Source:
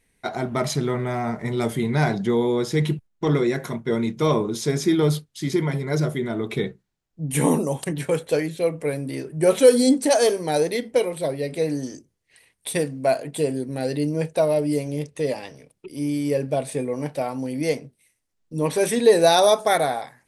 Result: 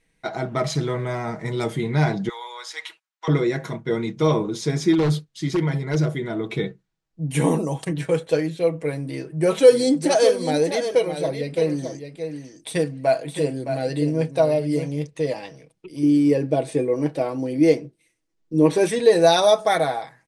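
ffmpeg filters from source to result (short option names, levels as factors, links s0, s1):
-filter_complex "[0:a]asettb=1/sr,asplit=3[s0][s1][s2];[s0]atrim=end=0.754[s3];[s1]atrim=start=0.75:end=1.64,asetpts=PTS-STARTPTS,afade=t=in:d=0.004:c=qsin,afade=t=out:st=0.886:d=0.004:c=qsin,bass=f=250:g=0,treble=f=4000:g=5[s4];[s2]atrim=start=1.636[s5];[s3][s4]acrossfade=d=0.004:c1=hsin:c2=qsin[s6];[s6][s5]acrossfade=d=0.004:c1=qsin:c2=hsin,asettb=1/sr,asplit=3[s7][s8][s9];[s7]atrim=end=2.294[s10];[s8]atrim=start=2.29:end=3.28,asetpts=PTS-STARTPTS,afade=t=in:d=0.004:c=qsin,afade=t=out:st=0.986:d=0.004:c=qsin,highpass=f=920:w=0.5412,highpass=f=920:w=1.3066[s11];[s9]atrim=start=3.276[s12];[s10][s11]acrossfade=d=0.004:c1=hsin:c2=qsin[s13];[s13][s12]acrossfade=d=0.004:c1=qsin:c2=hsin,asplit=3[s14][s15][s16];[s14]afade=t=out:st=4.92:d=0.02[s17];[s15]aeval=exprs='0.168*(abs(mod(val(0)/0.168+3,4)-2)-1)':c=same,afade=t=in:st=4.92:d=0.02,afade=t=out:st=6.11:d=0.02[s18];[s16]afade=t=in:st=6.11:d=0.02[s19];[s17][s18][s19]amix=inputs=3:normalize=0,asplit=3[s20][s21][s22];[s20]afade=t=out:st=9.7:d=0.02[s23];[s21]aecho=1:1:615:0.376,afade=t=in:st=9.7:d=0.02,afade=t=out:st=14.92:d=0.02[s24];[s22]afade=t=in:st=14.92:d=0.02[s25];[s23][s24][s25]amix=inputs=3:normalize=0,asettb=1/sr,asplit=3[s26][s27][s28];[s26]atrim=end=16.034[s29];[s27]atrim=start=16.03:end=18.86,asetpts=PTS-STARTPTS,afade=t=in:d=0.004:c=qsin,afade=t=out:st=2.826:d=0.004:c=qsin,equalizer=f=340:t=o:w=0.77:g=10.5[s30];[s28]atrim=start=18.856[s31];[s29][s30]acrossfade=d=0.004:c1=hsin:c2=qsin[s32];[s32][s31]acrossfade=d=0.004:c1=qsin:c2=hsin,lowpass=7300,aecho=1:1:6.2:0.47,volume=0.891"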